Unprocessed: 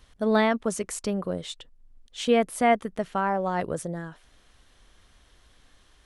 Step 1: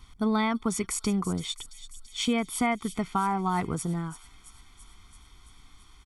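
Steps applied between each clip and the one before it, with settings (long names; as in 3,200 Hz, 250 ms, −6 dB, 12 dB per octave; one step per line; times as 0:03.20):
comb filter 0.9 ms, depth 98%
downward compressor, threshold −22 dBFS, peak gain reduction 7.5 dB
delay with a high-pass on its return 335 ms, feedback 68%, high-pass 3,900 Hz, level −11 dB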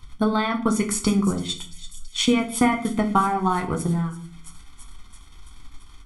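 transient designer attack +5 dB, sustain −7 dB
on a send at −3.5 dB: convolution reverb RT60 0.50 s, pre-delay 6 ms
on the sum: level +3.5 dB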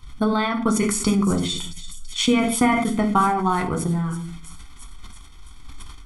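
level that may fall only so fast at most 36 dB per second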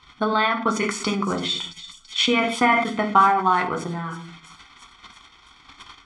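high-pass filter 1,000 Hz 6 dB per octave
high-frequency loss of the air 160 metres
level +7.5 dB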